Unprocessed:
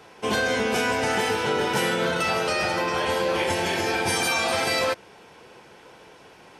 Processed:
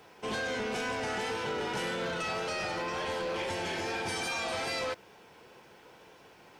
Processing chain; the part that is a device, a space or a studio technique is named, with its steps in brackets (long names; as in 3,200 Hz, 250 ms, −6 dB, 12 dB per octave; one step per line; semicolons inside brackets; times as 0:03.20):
compact cassette (soft clipping −22.5 dBFS, distortion −13 dB; low-pass filter 8,300 Hz 12 dB per octave; tape wow and flutter 29 cents; white noise bed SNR 39 dB)
level −6.5 dB